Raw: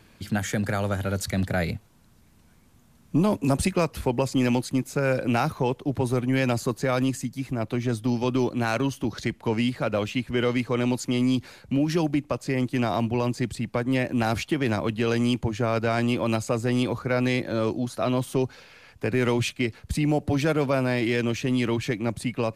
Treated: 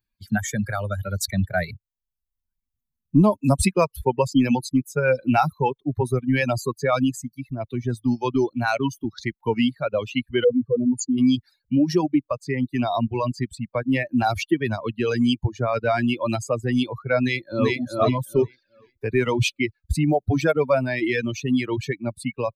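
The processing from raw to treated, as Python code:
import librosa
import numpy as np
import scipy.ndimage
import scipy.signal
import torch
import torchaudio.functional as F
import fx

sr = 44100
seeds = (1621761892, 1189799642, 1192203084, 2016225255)

y = fx.spec_expand(x, sr, power=2.2, at=(10.44, 11.18))
y = fx.echo_throw(y, sr, start_s=17.19, length_s=0.57, ms=390, feedback_pct=45, wet_db=-1.0)
y = fx.bin_expand(y, sr, power=2.0)
y = fx.dereverb_blind(y, sr, rt60_s=0.64)
y = fx.peak_eq(y, sr, hz=880.0, db=2.5, octaves=0.77)
y = y * librosa.db_to_amplitude(8.5)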